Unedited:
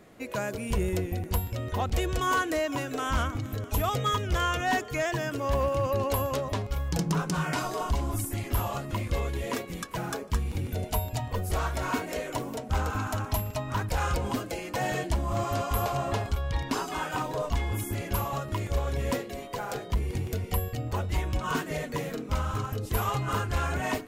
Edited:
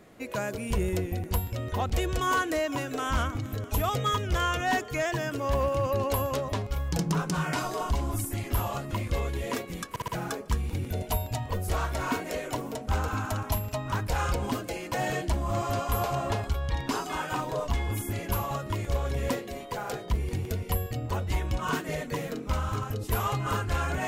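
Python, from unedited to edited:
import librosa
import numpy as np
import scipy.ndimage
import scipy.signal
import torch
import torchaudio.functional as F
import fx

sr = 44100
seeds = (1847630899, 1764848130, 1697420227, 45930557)

y = fx.edit(x, sr, fx.stutter(start_s=9.9, slice_s=0.06, count=4), tone=tone)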